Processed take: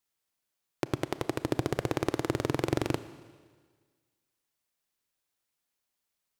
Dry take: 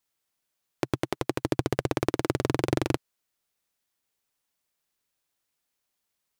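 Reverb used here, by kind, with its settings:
four-comb reverb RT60 1.6 s, combs from 27 ms, DRR 13.5 dB
level −3 dB

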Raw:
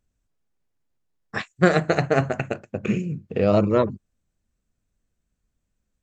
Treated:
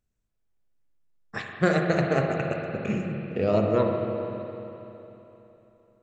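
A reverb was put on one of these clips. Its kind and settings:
spring reverb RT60 3.3 s, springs 42/57 ms, chirp 20 ms, DRR 1.5 dB
level −5.5 dB

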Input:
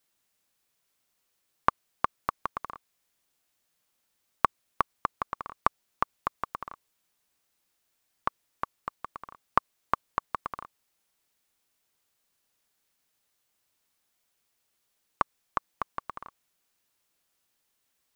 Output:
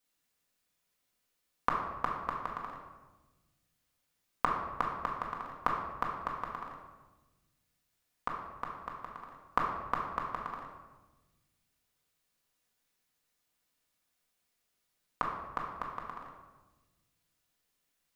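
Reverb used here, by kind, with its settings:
rectangular room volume 670 cubic metres, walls mixed, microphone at 1.9 metres
level −7 dB

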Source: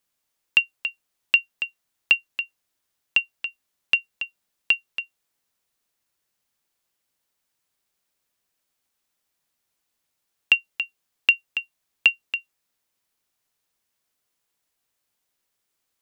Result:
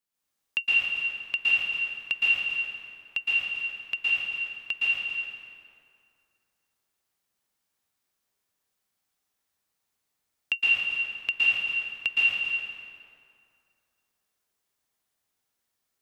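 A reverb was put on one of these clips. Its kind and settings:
dense smooth reverb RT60 2.4 s, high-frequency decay 0.65×, pre-delay 105 ms, DRR −8.5 dB
level −10.5 dB

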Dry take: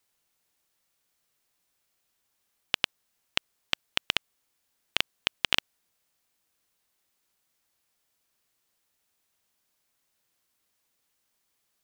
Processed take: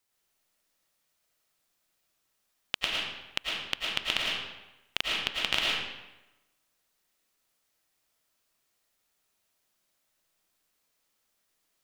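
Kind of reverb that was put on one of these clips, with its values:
comb and all-pass reverb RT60 1 s, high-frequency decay 0.8×, pre-delay 70 ms, DRR −3.5 dB
level −4 dB

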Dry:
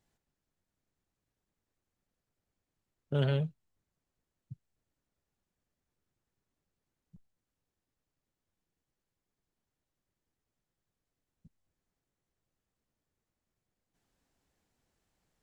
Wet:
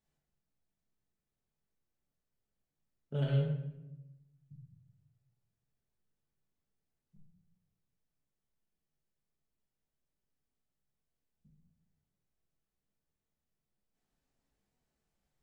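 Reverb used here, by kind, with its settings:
rectangular room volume 350 cubic metres, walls mixed, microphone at 1.5 metres
level −10 dB

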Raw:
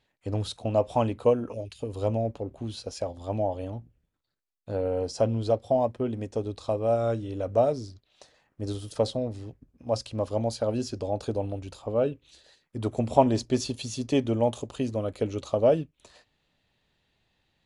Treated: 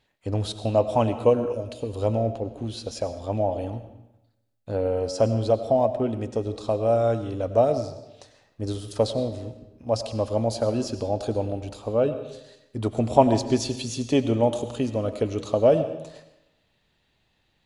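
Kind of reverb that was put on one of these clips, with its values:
comb and all-pass reverb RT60 0.92 s, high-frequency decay 0.85×, pre-delay 60 ms, DRR 10.5 dB
level +3 dB

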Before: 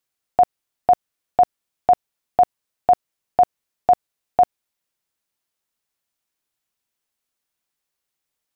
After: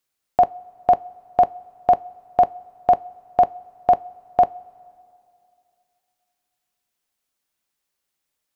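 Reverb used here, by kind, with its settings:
coupled-rooms reverb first 0.22 s, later 2.6 s, from −18 dB, DRR 15 dB
level +1.5 dB

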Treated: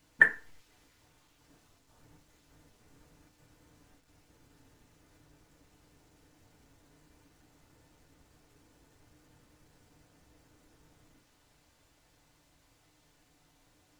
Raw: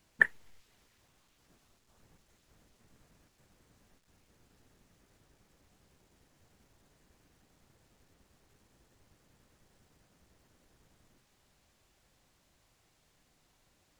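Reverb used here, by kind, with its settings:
feedback delay network reverb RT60 0.34 s, low-frequency decay 1×, high-frequency decay 0.6×, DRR 1 dB
level +1 dB

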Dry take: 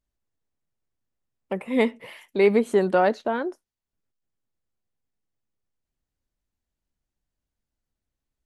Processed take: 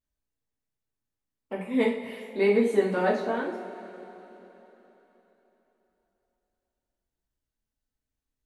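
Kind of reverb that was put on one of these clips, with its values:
coupled-rooms reverb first 0.42 s, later 3.8 s, from −18 dB, DRR −6 dB
level −10 dB

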